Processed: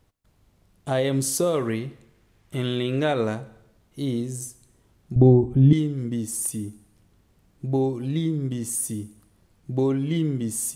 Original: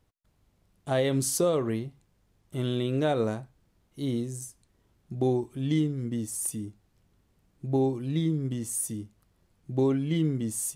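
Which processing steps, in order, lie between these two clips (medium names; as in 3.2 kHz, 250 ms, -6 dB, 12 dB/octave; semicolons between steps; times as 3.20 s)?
1.54–3.35 s: peaking EQ 2.1 kHz +6.5 dB 1.5 oct; reverberation RT60 0.80 s, pre-delay 17 ms, DRR 18.5 dB; in parallel at 0 dB: compression, threshold -34 dBFS, peak gain reduction 12.5 dB; 5.16–5.73 s: on the sum: tilt EQ -4.5 dB/octave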